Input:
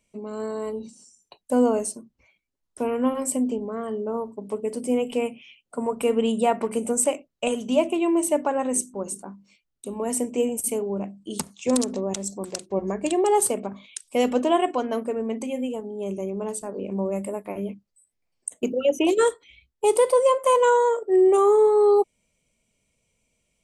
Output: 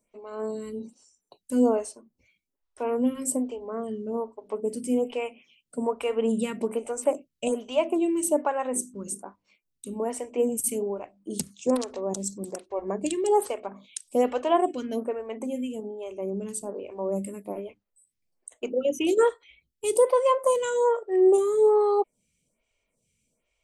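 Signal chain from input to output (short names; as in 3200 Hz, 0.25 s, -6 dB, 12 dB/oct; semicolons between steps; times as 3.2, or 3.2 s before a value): photocell phaser 1.2 Hz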